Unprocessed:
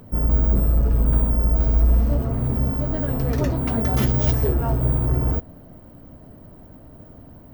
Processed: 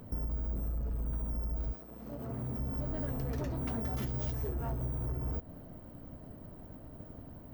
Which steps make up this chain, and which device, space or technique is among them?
drum-bus smash (transient shaper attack +5 dB, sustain +1 dB; compressor, threshold -24 dBFS, peak gain reduction 13.5 dB; soft clip -23 dBFS, distortion -15 dB); 1.72–2.57 HPF 280 Hz -> 75 Hz 12 dB/oct; gain -5.5 dB

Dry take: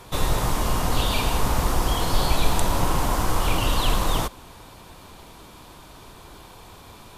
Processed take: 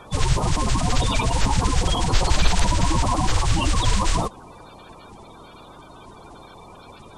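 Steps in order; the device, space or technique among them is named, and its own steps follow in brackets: clip after many re-uploads (LPF 8400 Hz 24 dB/oct; bin magnitudes rounded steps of 30 dB); gain +2 dB

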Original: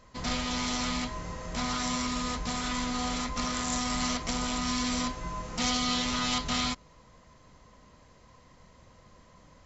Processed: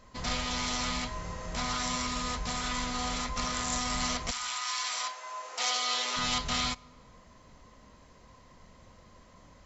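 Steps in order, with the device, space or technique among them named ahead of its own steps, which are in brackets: 4.3–6.16 HPF 1100 Hz -> 370 Hz 24 dB/oct; compressed reverb return (on a send at -7.5 dB: reverb RT60 0.90 s, pre-delay 3 ms + compressor 6:1, threshold -44 dBFS, peak gain reduction 17 dB); on the sum: dynamic EQ 270 Hz, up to -7 dB, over -48 dBFS, Q 1.6

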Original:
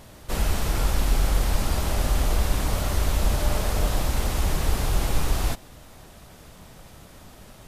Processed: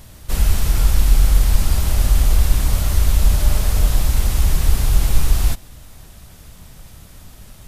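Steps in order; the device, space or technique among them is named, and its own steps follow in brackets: smiley-face EQ (low shelf 130 Hz +7 dB; bell 530 Hz -6 dB 2.9 oct; high shelf 8400 Hz +6 dB); gain +3 dB

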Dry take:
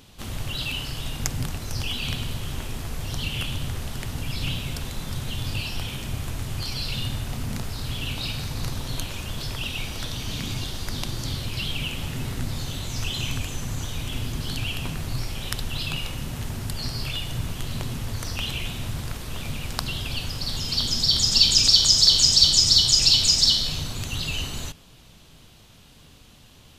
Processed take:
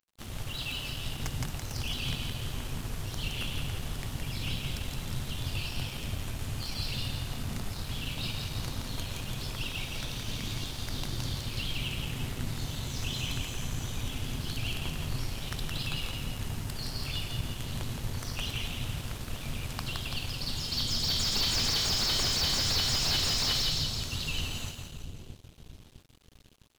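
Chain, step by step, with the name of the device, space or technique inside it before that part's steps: split-band echo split 460 Hz, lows 0.657 s, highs 0.168 s, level -5 dB; early transistor amplifier (crossover distortion -43 dBFS; slew limiter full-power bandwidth 350 Hz); gain -5.5 dB

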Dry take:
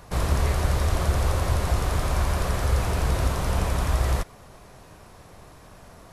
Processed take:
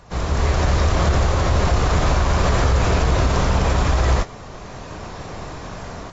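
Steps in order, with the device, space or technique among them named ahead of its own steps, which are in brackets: low-bitrate web radio (AGC gain up to 14 dB; limiter -9.5 dBFS, peak gain reduction 8 dB; AAC 24 kbps 22050 Hz)

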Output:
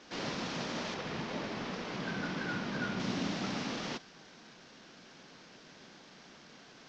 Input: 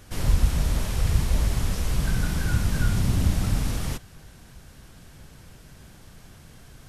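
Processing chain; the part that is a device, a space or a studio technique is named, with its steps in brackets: early wireless headset (HPF 210 Hz 24 dB/oct; CVSD 32 kbps); 0.94–3 LPF 2800 Hz 6 dB/oct; gain -1.5 dB

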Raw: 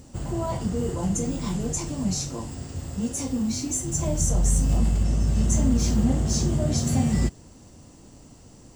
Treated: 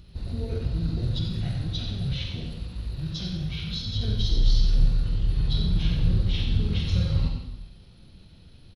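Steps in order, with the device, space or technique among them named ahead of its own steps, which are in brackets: monster voice (pitch shift -6.5 st; formant shift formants -4 st; low shelf 170 Hz +5.5 dB; echo 90 ms -9.5 dB; reverb RT60 1.0 s, pre-delay 35 ms, DRR 3 dB); gain -6 dB

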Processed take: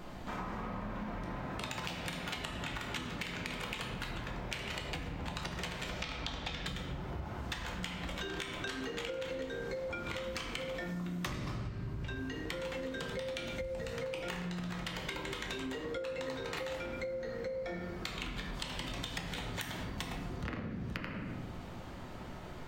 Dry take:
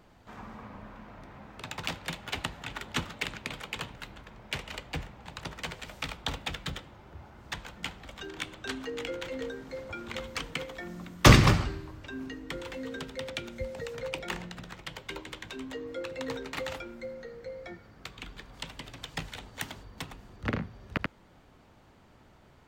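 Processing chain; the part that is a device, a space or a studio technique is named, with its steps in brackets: 5.89–6.64 resonant high shelf 7400 Hz -9 dB, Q 1.5; shoebox room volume 180 m³, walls mixed, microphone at 0.93 m; serial compression, peaks first (compressor 8:1, threshold -39 dBFS, peak gain reduction 28.5 dB; compressor 3:1, threshold -46 dBFS, peak gain reduction 9.5 dB); gain +8.5 dB

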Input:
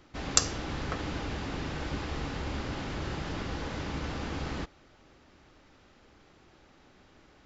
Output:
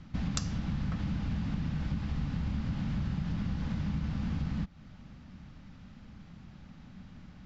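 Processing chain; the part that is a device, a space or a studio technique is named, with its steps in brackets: jukebox (LPF 6400 Hz 12 dB/oct; resonant low shelf 270 Hz +11 dB, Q 3; compressor 4:1, threshold -31 dBFS, peak gain reduction 12 dB)

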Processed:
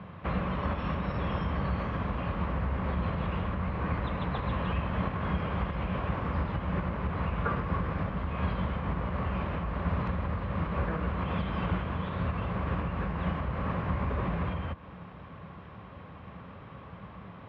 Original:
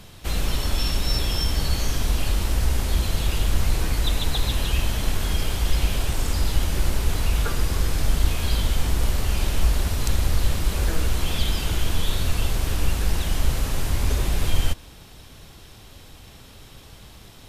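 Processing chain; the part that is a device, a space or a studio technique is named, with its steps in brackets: bass amplifier (compressor, threshold -21 dBFS, peak gain reduction 10 dB; speaker cabinet 67–2200 Hz, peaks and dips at 180 Hz +10 dB, 350 Hz -3 dB, 550 Hz +5 dB, 1100 Hz +10 dB)

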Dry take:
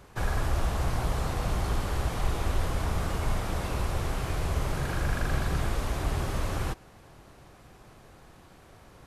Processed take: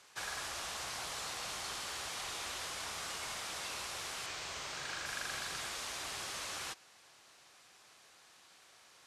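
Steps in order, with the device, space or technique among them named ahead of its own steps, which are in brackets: piezo pickup straight into a mixer (LPF 6100 Hz 12 dB/oct; differentiator); 4.26–5.06 bell 11000 Hz -15 dB 0.4 oct; gain +8 dB

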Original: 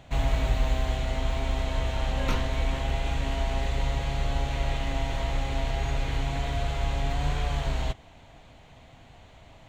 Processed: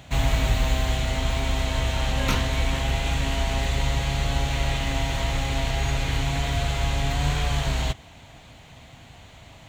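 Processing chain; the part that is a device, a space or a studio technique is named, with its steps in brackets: HPF 150 Hz 6 dB/oct; smiley-face EQ (low shelf 150 Hz +6.5 dB; bell 510 Hz -5 dB 2.4 oct; high shelf 6500 Hz +6.5 dB); gain +7 dB

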